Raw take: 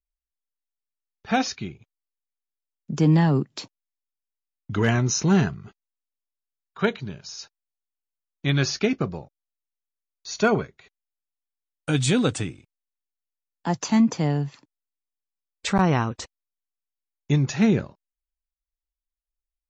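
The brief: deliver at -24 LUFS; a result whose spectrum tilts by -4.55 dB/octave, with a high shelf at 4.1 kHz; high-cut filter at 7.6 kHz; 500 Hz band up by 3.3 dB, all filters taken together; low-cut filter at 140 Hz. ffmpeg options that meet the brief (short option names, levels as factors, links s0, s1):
-af "highpass=140,lowpass=7600,equalizer=f=500:t=o:g=4,highshelf=f=4100:g=9,volume=0.891"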